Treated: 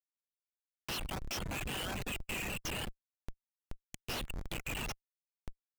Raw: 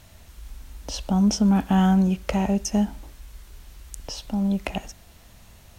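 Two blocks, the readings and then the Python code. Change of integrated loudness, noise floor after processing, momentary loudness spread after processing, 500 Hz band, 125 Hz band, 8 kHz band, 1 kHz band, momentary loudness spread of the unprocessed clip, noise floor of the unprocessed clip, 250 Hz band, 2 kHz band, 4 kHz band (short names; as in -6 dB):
-16.5 dB, under -85 dBFS, 20 LU, -14.0 dB, -19.0 dB, -9.5 dB, -15.0 dB, 17 LU, -51 dBFS, -26.0 dB, -2.5 dB, -5.0 dB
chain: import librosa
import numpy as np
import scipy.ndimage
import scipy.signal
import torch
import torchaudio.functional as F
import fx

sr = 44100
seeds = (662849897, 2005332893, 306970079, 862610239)

p1 = fx.ladder_bandpass(x, sr, hz=2800.0, resonance_pct=70)
p2 = fx.over_compress(p1, sr, threshold_db=-56.0, ratio=-1.0)
p3 = p1 + F.gain(torch.from_numpy(p2), -0.5).numpy()
p4 = fx.schmitt(p3, sr, flips_db=-45.0)
p5 = fx.dereverb_blind(p4, sr, rt60_s=0.5)
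p6 = fx.vibrato(p5, sr, rate_hz=5.3, depth_cents=34.0)
y = F.gain(torch.from_numpy(p6), 11.0).numpy()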